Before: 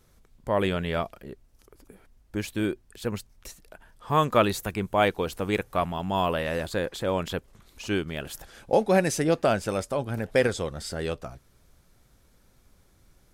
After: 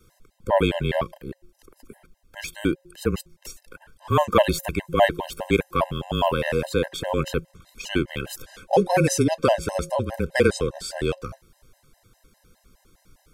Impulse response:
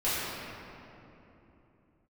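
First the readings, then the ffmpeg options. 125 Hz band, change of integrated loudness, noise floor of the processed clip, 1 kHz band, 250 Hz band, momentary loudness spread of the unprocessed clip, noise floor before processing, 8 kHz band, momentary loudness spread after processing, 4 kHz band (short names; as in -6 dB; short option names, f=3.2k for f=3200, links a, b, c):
+4.0 dB, +3.0 dB, -65 dBFS, +2.5 dB, +3.0 dB, 15 LU, -61 dBFS, +4.5 dB, 16 LU, +3.5 dB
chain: -af "bandreject=f=190.3:t=h:w=4,bandreject=f=380.6:t=h:w=4,bandreject=f=570.9:t=h:w=4,afreqshift=-27,afftfilt=real='re*gt(sin(2*PI*4.9*pts/sr)*(1-2*mod(floor(b*sr/1024/530),2)),0)':imag='im*gt(sin(2*PI*4.9*pts/sr)*(1-2*mod(floor(b*sr/1024/530),2)),0)':win_size=1024:overlap=0.75,volume=7dB"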